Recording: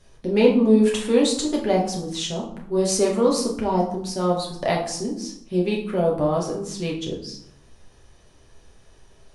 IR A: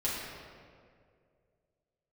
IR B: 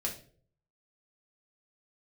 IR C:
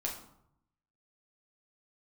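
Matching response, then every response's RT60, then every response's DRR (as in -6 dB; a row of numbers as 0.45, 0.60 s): C; 2.2 s, not exponential, 0.75 s; -8.5, -2.0, -2.5 dB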